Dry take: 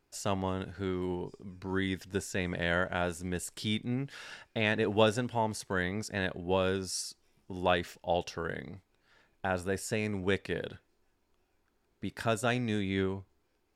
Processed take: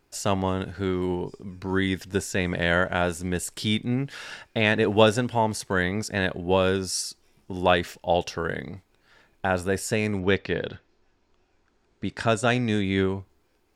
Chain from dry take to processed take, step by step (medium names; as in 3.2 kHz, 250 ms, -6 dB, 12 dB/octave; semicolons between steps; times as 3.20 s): 10.19–12.82 s: low-pass 5.1 kHz -> 10 kHz 24 dB/octave; trim +7.5 dB